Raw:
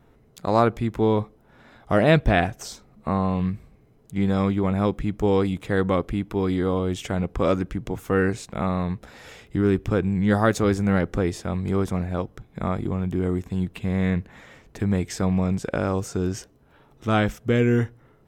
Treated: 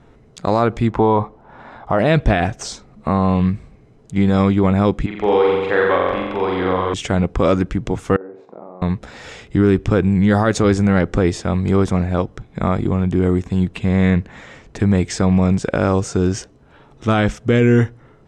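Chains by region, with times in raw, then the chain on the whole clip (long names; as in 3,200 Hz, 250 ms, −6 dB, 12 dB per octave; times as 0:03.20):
0:00.90–0:01.99: low-pass filter 2,800 Hz 6 dB per octave + parametric band 910 Hz +11 dB 1.1 octaves
0:05.06–0:06.94: three-way crossover with the lows and the highs turned down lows −17 dB, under 420 Hz, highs −22 dB, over 3,800 Hz + flutter between parallel walls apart 7.5 metres, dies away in 1.2 s
0:08.16–0:08.82: downward compressor 16 to 1, threshold −34 dBFS + flat-topped band-pass 540 Hz, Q 0.88 + flutter between parallel walls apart 8.5 metres, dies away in 0.41 s
whole clip: low-pass filter 8,500 Hz 24 dB per octave; de-essing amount 50%; boost into a limiter +12.5 dB; level −4.5 dB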